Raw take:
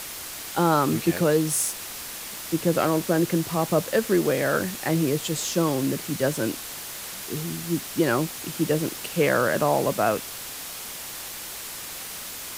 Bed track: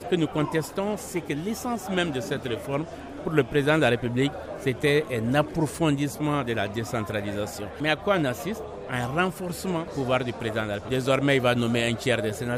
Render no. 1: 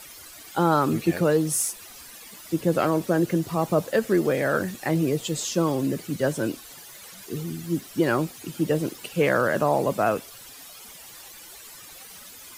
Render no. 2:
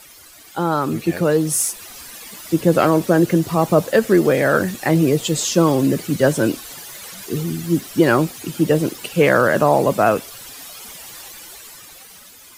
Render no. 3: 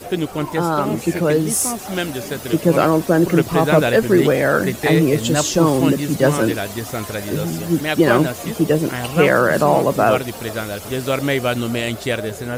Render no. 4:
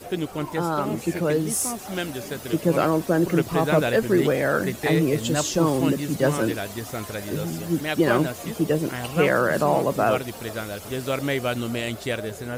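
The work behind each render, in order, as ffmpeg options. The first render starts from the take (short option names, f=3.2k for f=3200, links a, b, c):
-af "afftdn=nr=13:nf=-37"
-af "dynaudnorm=f=280:g=9:m=11.5dB"
-filter_complex "[1:a]volume=2.5dB[a];[0:a][a]amix=inputs=2:normalize=0"
-af "volume=-6dB"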